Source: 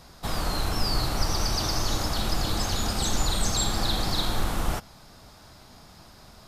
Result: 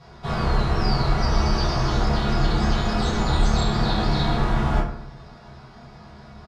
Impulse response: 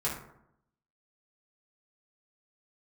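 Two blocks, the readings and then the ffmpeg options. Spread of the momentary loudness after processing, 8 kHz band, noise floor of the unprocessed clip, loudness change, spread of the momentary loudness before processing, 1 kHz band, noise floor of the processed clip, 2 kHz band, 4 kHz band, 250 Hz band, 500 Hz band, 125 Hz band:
5 LU, -9.5 dB, -51 dBFS, +4.5 dB, 4 LU, +6.0 dB, -45 dBFS, +5.0 dB, -2.0 dB, +8.0 dB, +7.0 dB, +8.0 dB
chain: -filter_complex "[0:a]lowpass=3800,asplit=2[s0][s1];[s1]adelay=29,volume=0.531[s2];[s0][s2]amix=inputs=2:normalize=0[s3];[1:a]atrim=start_sample=2205[s4];[s3][s4]afir=irnorm=-1:irlink=0,volume=0.794"

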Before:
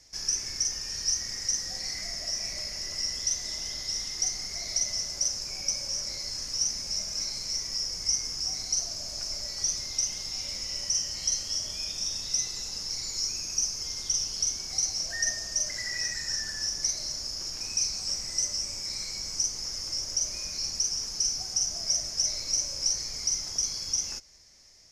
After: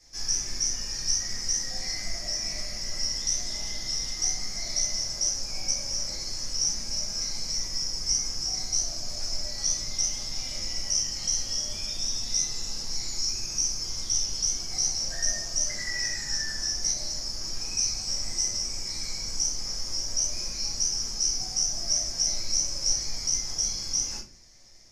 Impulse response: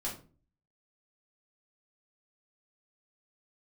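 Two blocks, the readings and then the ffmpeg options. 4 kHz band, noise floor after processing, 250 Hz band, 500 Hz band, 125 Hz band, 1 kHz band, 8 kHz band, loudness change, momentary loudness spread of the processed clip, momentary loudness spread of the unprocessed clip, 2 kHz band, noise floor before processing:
+1.0 dB, -35 dBFS, +5.0 dB, +2.5 dB, +5.0 dB, +3.5 dB, +1.5 dB, +1.5 dB, 5 LU, 5 LU, +0.5 dB, -38 dBFS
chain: -filter_complex "[1:a]atrim=start_sample=2205[s0];[0:a][s0]afir=irnorm=-1:irlink=0"

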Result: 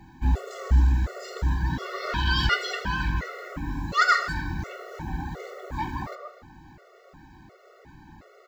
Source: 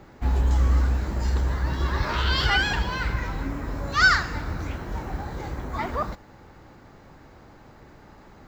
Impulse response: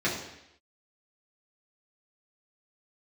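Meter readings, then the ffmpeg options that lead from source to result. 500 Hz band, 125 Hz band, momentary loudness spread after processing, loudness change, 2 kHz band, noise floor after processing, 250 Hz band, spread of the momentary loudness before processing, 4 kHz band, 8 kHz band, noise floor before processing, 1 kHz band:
-2.0 dB, -2.0 dB, 15 LU, -2.0 dB, -4.0 dB, -54 dBFS, -1.0 dB, 14 LU, -2.5 dB, no reading, -50 dBFS, 0.0 dB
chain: -filter_complex "[0:a]asplit=2[s0][s1];[s1]adelay=250,highpass=300,lowpass=3400,asoftclip=type=hard:threshold=0.15,volume=0.2[s2];[s0][s2]amix=inputs=2:normalize=0,asplit=2[s3][s4];[1:a]atrim=start_sample=2205,asetrate=36162,aresample=44100[s5];[s4][s5]afir=irnorm=-1:irlink=0,volume=0.106[s6];[s3][s6]amix=inputs=2:normalize=0,afftfilt=real='re*gt(sin(2*PI*1.4*pts/sr)*(1-2*mod(floor(b*sr/1024/370),2)),0)':imag='im*gt(sin(2*PI*1.4*pts/sr)*(1-2*mod(floor(b*sr/1024/370),2)),0)':win_size=1024:overlap=0.75"

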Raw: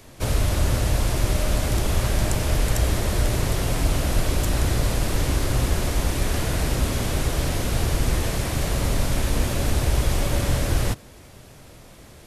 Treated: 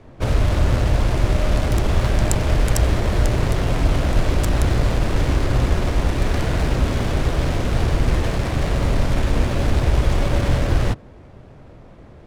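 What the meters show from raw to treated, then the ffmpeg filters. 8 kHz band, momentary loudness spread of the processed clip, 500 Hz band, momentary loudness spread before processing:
-5.0 dB, 2 LU, +4.0 dB, 2 LU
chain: -af "crystalizer=i=1.5:c=0,adynamicsmooth=sensitivity=2.5:basefreq=1300,volume=1.58"

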